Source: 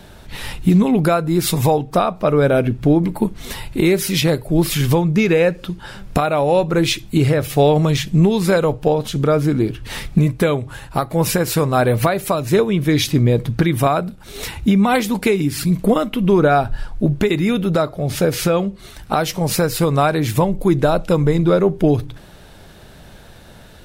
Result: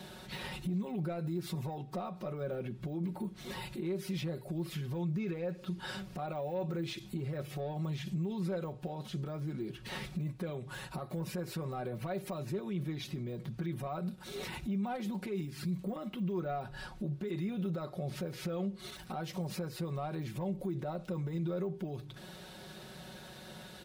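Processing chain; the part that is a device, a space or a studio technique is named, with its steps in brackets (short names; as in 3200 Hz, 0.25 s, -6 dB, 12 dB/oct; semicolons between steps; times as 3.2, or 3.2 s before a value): broadcast voice chain (HPF 94 Hz 12 dB/oct; de-esser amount 100%; compressor 3:1, threshold -28 dBFS, peak gain reduction 14 dB; bell 4100 Hz +3.5 dB 0.95 oct; limiter -25 dBFS, peak gain reduction 10.5 dB); comb 5.4 ms, depth 69%; gain -7.5 dB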